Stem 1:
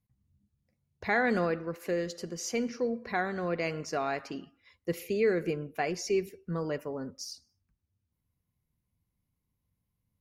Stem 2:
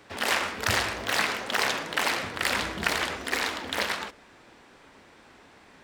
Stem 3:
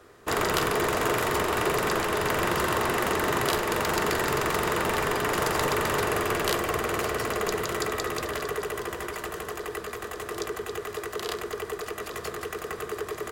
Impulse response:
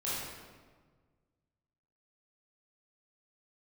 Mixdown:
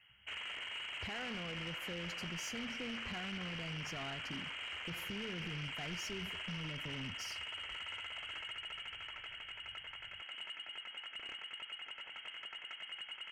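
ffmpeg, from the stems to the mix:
-filter_complex "[0:a]asubboost=boost=11:cutoff=140,alimiter=level_in=1.5dB:limit=-24dB:level=0:latency=1,volume=-1.5dB,acompressor=threshold=-35dB:ratio=6,volume=-4dB[a];[1:a]adelay=1000,volume=-19dB[b];[2:a]volume=-12.5dB[c];[b][c]amix=inputs=2:normalize=0,lowpass=f=2.8k:t=q:w=0.5098,lowpass=f=2.8k:t=q:w=0.6013,lowpass=f=2.8k:t=q:w=0.9,lowpass=f=2.8k:t=q:w=2.563,afreqshift=-3300,alimiter=level_in=9.5dB:limit=-24dB:level=0:latency=1:release=85,volume=-9.5dB,volume=0dB[d];[a][d]amix=inputs=2:normalize=0,asoftclip=type=tanh:threshold=-36.5dB"

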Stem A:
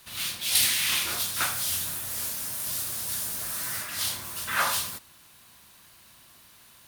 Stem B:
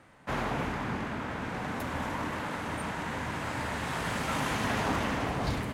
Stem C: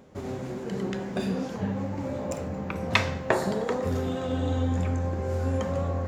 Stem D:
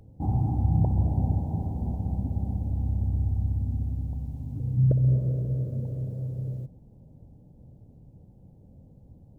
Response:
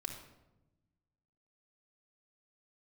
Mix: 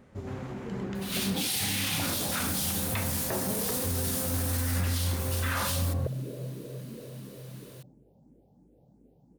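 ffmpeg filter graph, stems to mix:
-filter_complex "[0:a]adelay=950,volume=-0.5dB[a];[1:a]alimiter=level_in=7.5dB:limit=-24dB:level=0:latency=1,volume=-7.5dB,volume=-7dB[b];[2:a]lowshelf=f=200:g=11,flanger=delay=8:depth=3.6:regen=77:speed=1.3:shape=triangular,volume=-4dB[c];[3:a]highpass=f=190:w=0.5412,highpass=f=190:w=1.3066,aeval=exprs='val(0)+0.000501*(sin(2*PI*50*n/s)+sin(2*PI*2*50*n/s)/2+sin(2*PI*3*50*n/s)/3+sin(2*PI*4*50*n/s)/4+sin(2*PI*5*50*n/s)/5)':c=same,asplit=2[d][e];[e]afreqshift=2.9[f];[d][f]amix=inputs=2:normalize=1,adelay=1150,volume=-1dB,asplit=2[g][h];[h]volume=-6.5dB[i];[4:a]atrim=start_sample=2205[j];[i][j]afir=irnorm=-1:irlink=0[k];[a][b][c][g][k]amix=inputs=5:normalize=0,alimiter=limit=-20.5dB:level=0:latency=1:release=10"

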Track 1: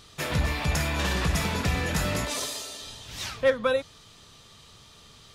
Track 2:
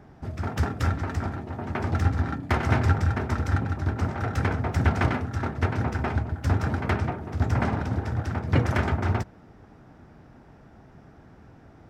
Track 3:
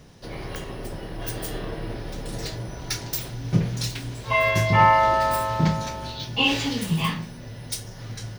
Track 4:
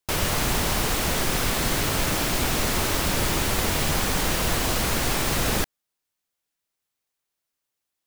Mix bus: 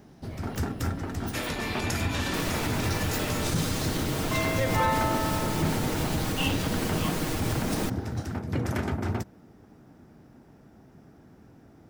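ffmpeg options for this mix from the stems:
-filter_complex "[0:a]highpass=f=1.2k:p=1,adelay=1150,volume=-1dB[a];[1:a]aemphasis=mode=production:type=75fm,volume=-8dB[b];[2:a]volume=-10dB[c];[3:a]aecho=1:1:6.4:0.55,adelay=2250,volume=-10dB[d];[a][b][d]amix=inputs=3:normalize=0,equalizer=f=260:w=0.54:g=9,alimiter=limit=-18.5dB:level=0:latency=1:release=75,volume=0dB[e];[c][e]amix=inputs=2:normalize=0"

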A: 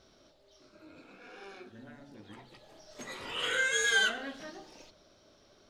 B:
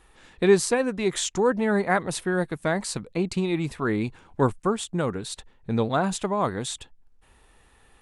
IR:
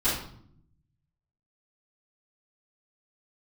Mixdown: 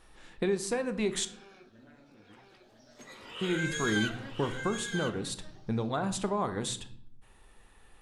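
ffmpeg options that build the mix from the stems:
-filter_complex "[0:a]volume=-6.5dB,asplit=2[a][b];[b]volume=-5.5dB[c];[1:a]acompressor=threshold=-24dB:ratio=10,volume=-3.5dB,asplit=3[d][e][f];[d]atrim=end=1.25,asetpts=PTS-STARTPTS,afade=t=out:st=1.246:d=0.004:c=hsin[g];[e]atrim=start=1.25:end=3.41,asetpts=PTS-STARTPTS,volume=0[h];[f]atrim=start=3.41,asetpts=PTS-STARTPTS,afade=t=in:d=0.004:c=hsin[i];[g][h][i]concat=n=3:v=0:a=1,asplit=2[j][k];[k]volume=-20dB[l];[2:a]atrim=start_sample=2205[m];[l][m]afir=irnorm=-1:irlink=0[n];[c]aecho=0:1:1002:1[o];[a][j][n][o]amix=inputs=4:normalize=0"

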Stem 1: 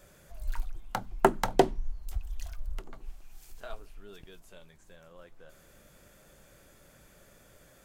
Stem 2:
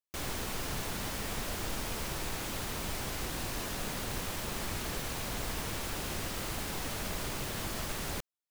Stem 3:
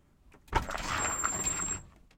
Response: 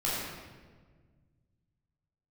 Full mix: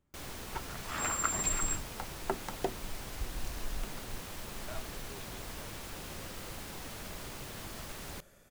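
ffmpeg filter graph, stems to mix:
-filter_complex "[0:a]dynaudnorm=f=110:g=9:m=13.5dB,adelay=1050,volume=-16dB[a];[1:a]volume=-7dB[b];[2:a]volume=-0.5dB,afade=t=in:st=0.86:d=0.25:silence=0.266073[c];[a][b][c]amix=inputs=3:normalize=0"

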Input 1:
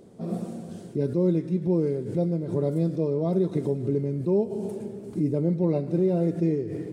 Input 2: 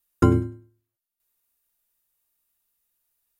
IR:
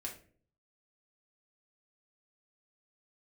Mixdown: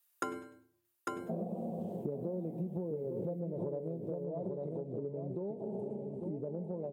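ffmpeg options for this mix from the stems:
-filter_complex "[0:a]firequalizer=gain_entry='entry(100,0);entry(200,9);entry(290,3);entry(530,14);entry(850,12);entry(1400,-14);entry(2700,-6);entry(4900,-16);entry(8000,-12)':delay=0.05:min_phase=1,acompressor=threshold=-20dB:ratio=6,adelay=1100,volume=-4dB,afade=t=out:st=3.8:d=0.29:silence=0.375837,asplit=2[a][b];[b]volume=-8dB[c];[1:a]highpass=610,volume=-1dB,asplit=3[d][e][f];[e]volume=-5.5dB[g];[f]volume=-5dB[h];[2:a]atrim=start_sample=2205[i];[g][i]afir=irnorm=-1:irlink=0[j];[c][h]amix=inputs=2:normalize=0,aecho=0:1:849:1[k];[a][d][j][k]amix=inputs=4:normalize=0,acompressor=threshold=-35dB:ratio=6"

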